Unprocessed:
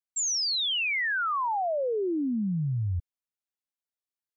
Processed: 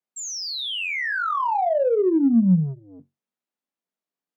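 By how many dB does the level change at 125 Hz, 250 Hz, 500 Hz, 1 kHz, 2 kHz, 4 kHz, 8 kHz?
+4.0 dB, +10.5 dB, +8.0 dB, +5.0 dB, +1.5 dB, −1.5 dB, can't be measured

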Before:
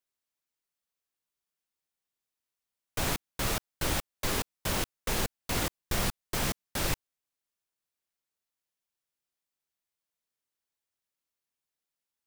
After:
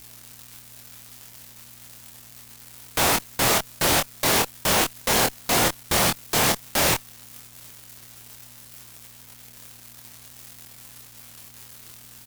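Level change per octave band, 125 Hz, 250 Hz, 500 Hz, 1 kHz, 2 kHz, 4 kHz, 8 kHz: +4.5, +8.0, +11.0, +12.5, +11.0, +11.5, +12.0 decibels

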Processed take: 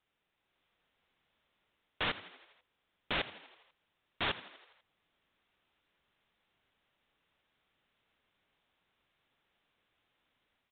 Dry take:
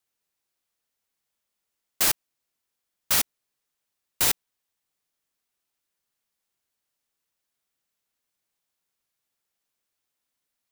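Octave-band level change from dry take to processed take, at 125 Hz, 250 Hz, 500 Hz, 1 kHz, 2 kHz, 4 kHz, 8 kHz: −4.5 dB, −4.5 dB, −3.0 dB, −4.0 dB, −4.0 dB, −8.5 dB, below −40 dB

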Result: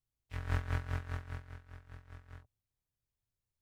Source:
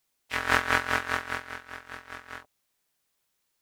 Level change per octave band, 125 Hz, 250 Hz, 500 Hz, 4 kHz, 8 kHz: +7.0, −10.0, −14.5, −20.5, −20.5 decibels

